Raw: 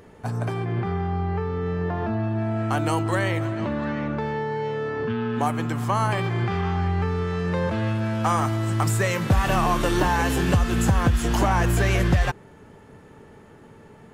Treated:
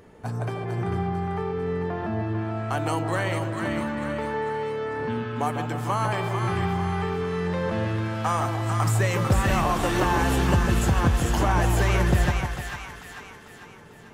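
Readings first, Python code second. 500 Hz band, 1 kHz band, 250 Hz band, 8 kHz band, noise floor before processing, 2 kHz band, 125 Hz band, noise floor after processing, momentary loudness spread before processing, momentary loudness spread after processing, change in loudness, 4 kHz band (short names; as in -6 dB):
-0.5 dB, -1.0 dB, -2.0 dB, -1.0 dB, -48 dBFS, -1.0 dB, -1.5 dB, -46 dBFS, 7 LU, 9 LU, -1.5 dB, -1.0 dB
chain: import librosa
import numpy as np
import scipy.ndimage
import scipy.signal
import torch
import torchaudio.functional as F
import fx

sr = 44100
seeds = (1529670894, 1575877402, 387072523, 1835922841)

y = fx.echo_split(x, sr, split_hz=900.0, low_ms=152, high_ms=446, feedback_pct=52, wet_db=-4.5)
y = y * 10.0 ** (-2.5 / 20.0)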